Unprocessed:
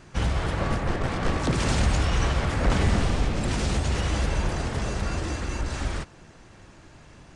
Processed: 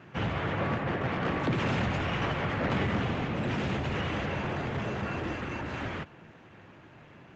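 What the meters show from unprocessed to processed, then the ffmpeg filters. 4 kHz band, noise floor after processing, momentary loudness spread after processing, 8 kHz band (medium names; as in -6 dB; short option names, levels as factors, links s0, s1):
-6.0 dB, -53 dBFS, 6 LU, -18.5 dB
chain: -af "highpass=f=100:w=0.5412,highpass=f=100:w=1.3066,highshelf=f=3800:t=q:w=1.5:g=-10.5,aresample=16000,asoftclip=type=tanh:threshold=0.0891,aresample=44100" -ar 48000 -c:a libopus -b:a 32k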